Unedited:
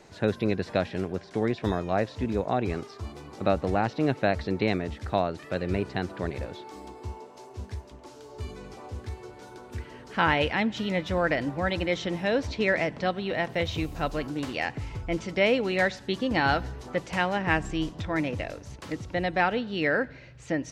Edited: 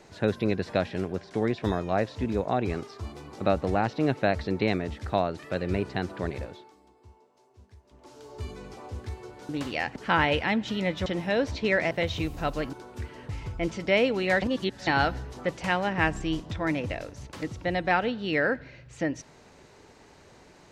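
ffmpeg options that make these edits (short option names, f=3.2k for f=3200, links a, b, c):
-filter_complex "[0:a]asplit=11[a][b][c][d][e][f][g][h][i][j][k];[a]atrim=end=6.76,asetpts=PTS-STARTPTS,afade=t=out:st=6.33:d=0.43:silence=0.149624[l];[b]atrim=start=6.76:end=7.83,asetpts=PTS-STARTPTS,volume=-16.5dB[m];[c]atrim=start=7.83:end=9.492,asetpts=PTS-STARTPTS,afade=t=in:d=0.43:silence=0.149624[n];[d]atrim=start=14.308:end=14.782[o];[e]atrim=start=10.048:end=11.152[p];[f]atrim=start=12.018:end=12.872[q];[g]atrim=start=13.488:end=14.312[r];[h]atrim=start=9.488:end=10.052[s];[i]atrim=start=14.778:end=15.912[t];[j]atrim=start=15.908:end=16.362,asetpts=PTS-STARTPTS,areverse[u];[k]atrim=start=16.358[v];[l][m][n]concat=n=3:v=0:a=1[w];[w][o]acrossfade=d=0.004:c1=hsin:c2=hsin[x];[x][p]acrossfade=d=0.004:c1=hsin:c2=hsin[y];[y][q]acrossfade=d=0.004:c1=hsin:c2=hsin[z];[z][r]acrossfade=d=0.004:c1=hsin:c2=hsin[aa];[aa][s]acrossfade=d=0.004:c1=hsin:c2=hsin[ab];[ab][t]acrossfade=d=0.004:c1=hsin:c2=hsin[ac];[ac][u]acrossfade=d=0.004:c1=hsin:c2=hsin[ad];[ad][v]acrossfade=d=0.004:c1=hsin:c2=hsin"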